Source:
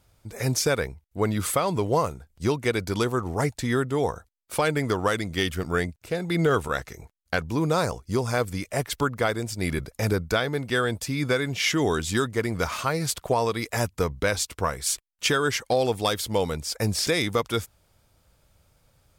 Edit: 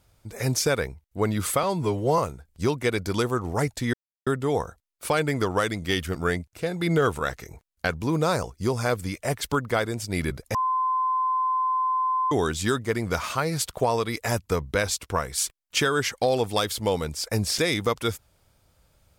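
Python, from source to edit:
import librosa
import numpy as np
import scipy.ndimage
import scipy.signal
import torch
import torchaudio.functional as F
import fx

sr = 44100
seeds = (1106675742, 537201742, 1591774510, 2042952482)

y = fx.edit(x, sr, fx.stretch_span(start_s=1.63, length_s=0.37, factor=1.5),
    fx.insert_silence(at_s=3.75, length_s=0.33),
    fx.bleep(start_s=10.03, length_s=1.77, hz=1030.0, db=-21.0), tone=tone)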